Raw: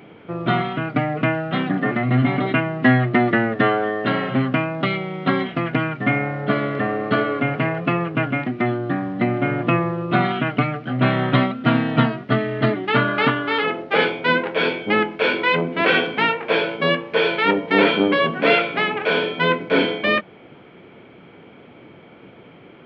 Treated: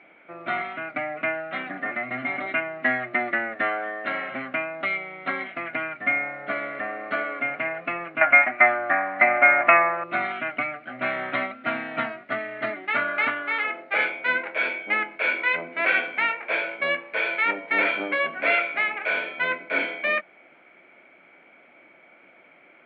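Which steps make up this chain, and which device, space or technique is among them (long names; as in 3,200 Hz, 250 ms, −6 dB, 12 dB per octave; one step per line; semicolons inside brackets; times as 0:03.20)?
0:08.21–0:10.04: flat-topped bell 1,200 Hz +13.5 dB 2.4 octaves
phone earpiece (loudspeaker in its box 410–3,900 Hz, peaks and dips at 440 Hz −10 dB, 620 Hz +5 dB, 980 Hz −3 dB, 1,500 Hz +4 dB, 2,200 Hz +10 dB, 3,200 Hz −6 dB)
level −7.5 dB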